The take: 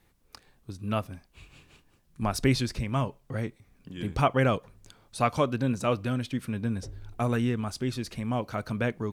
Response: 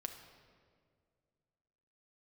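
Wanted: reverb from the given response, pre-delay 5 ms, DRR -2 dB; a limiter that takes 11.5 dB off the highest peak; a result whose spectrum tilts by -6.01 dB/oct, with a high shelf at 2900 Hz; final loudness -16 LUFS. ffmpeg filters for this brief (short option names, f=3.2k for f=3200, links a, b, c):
-filter_complex "[0:a]highshelf=f=2.9k:g=-5.5,alimiter=limit=-22.5dB:level=0:latency=1,asplit=2[a][b];[1:a]atrim=start_sample=2205,adelay=5[c];[b][c]afir=irnorm=-1:irlink=0,volume=4.5dB[d];[a][d]amix=inputs=2:normalize=0,volume=14dB"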